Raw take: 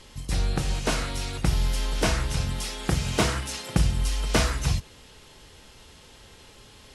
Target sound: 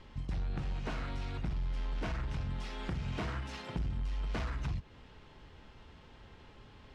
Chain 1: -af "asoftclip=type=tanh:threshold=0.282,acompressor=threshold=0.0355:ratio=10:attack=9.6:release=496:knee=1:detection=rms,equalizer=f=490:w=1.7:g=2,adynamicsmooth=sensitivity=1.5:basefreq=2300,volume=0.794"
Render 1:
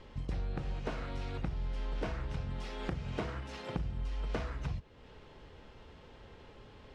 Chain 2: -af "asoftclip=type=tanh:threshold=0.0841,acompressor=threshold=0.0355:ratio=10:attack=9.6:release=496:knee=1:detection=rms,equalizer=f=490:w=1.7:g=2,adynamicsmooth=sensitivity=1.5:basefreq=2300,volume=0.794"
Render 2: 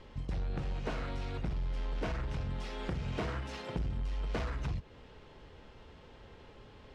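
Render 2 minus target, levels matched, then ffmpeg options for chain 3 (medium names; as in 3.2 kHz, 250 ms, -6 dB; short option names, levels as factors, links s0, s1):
500 Hz band +4.5 dB
-af "asoftclip=type=tanh:threshold=0.0841,acompressor=threshold=0.0355:ratio=10:attack=9.6:release=496:knee=1:detection=rms,equalizer=f=490:w=1.7:g=-4.5,adynamicsmooth=sensitivity=1.5:basefreq=2300,volume=0.794"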